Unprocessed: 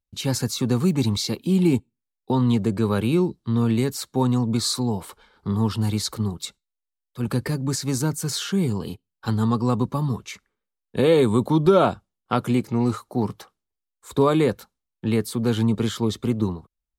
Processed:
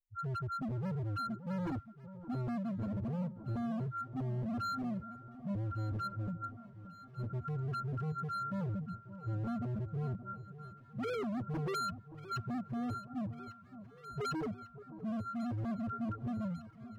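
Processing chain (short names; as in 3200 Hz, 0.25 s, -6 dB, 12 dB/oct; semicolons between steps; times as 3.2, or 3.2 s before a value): sample sorter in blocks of 32 samples; bell 500 Hz -3 dB 1.7 oct; loudest bins only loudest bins 1; overloaded stage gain 35.5 dB; echo with dull and thin repeats by turns 0.574 s, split 1100 Hz, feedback 79%, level -13.5 dB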